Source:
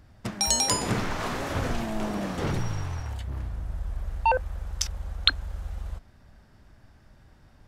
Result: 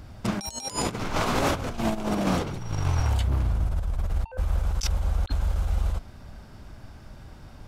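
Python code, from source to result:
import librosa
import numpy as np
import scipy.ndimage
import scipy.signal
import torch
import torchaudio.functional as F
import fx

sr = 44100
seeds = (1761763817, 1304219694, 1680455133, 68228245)

y = fx.peak_eq(x, sr, hz=1800.0, db=-7.5, octaves=0.23)
y = fx.over_compress(y, sr, threshold_db=-32.0, ratio=-0.5)
y = y * librosa.db_to_amplitude(7.0)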